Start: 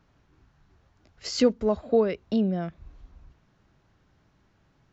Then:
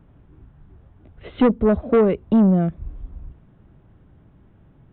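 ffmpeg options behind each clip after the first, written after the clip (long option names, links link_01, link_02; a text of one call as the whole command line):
ffmpeg -i in.wav -af "tiltshelf=frequency=760:gain=8,aresample=8000,asoftclip=type=tanh:threshold=-16.5dB,aresample=44100,volume=6.5dB" out.wav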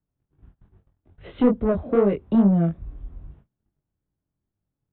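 ffmpeg -i in.wav -filter_complex "[0:a]agate=range=-28dB:threshold=-45dB:ratio=16:detection=peak,acrossover=split=340|1200[link_01][link_02][link_03];[link_03]alimiter=level_in=6dB:limit=-24dB:level=0:latency=1,volume=-6dB[link_04];[link_01][link_02][link_04]amix=inputs=3:normalize=0,flanger=delay=20:depth=4.6:speed=2.4" out.wav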